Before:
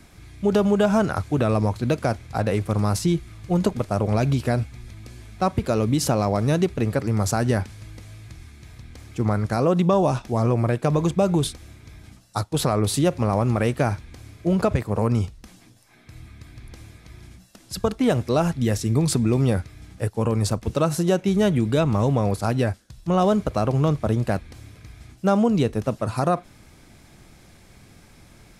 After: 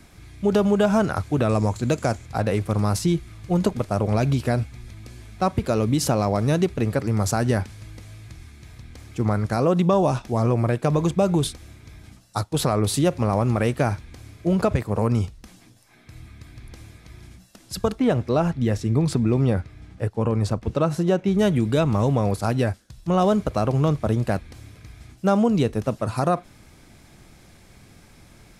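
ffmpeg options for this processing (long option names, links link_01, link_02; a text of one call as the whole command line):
ffmpeg -i in.wav -filter_complex "[0:a]asettb=1/sr,asplit=3[link_01][link_02][link_03];[link_01]atrim=end=1.494[link_04];[link_02]atrim=start=1.49:end=2.26,asetpts=PTS-STARTPTS,afade=type=in:duration=0.004:curve=qsin,afade=type=out:start_time=0.766:duration=0.004:curve=qsin,equalizer=frequency=7200:width=3.5:gain=13[link_05];[link_03]atrim=start=2.256[link_06];[link_04][link_05]acrossfade=duration=0.004:curve1=hsin:curve2=qsin[link_07];[link_07][link_06]acrossfade=duration=0.004:curve1=qsin:curve2=hsin,asettb=1/sr,asplit=3[link_08][link_09][link_10];[link_08]atrim=end=17.994[link_11];[link_09]atrim=start=17.99:end=21.39,asetpts=PTS-STARTPTS,afade=type=in:duration=0.004:curve=qsin,afade=type=out:start_time=3.396:duration=0.004:curve=qsin,lowpass=frequency=2600:poles=1[link_12];[link_10]atrim=start=21.386[link_13];[link_11][link_12]acrossfade=duration=0.004:curve1=hsin:curve2=qsin[link_14];[link_14][link_13]acrossfade=duration=0.004:curve1=qsin:curve2=hsin" out.wav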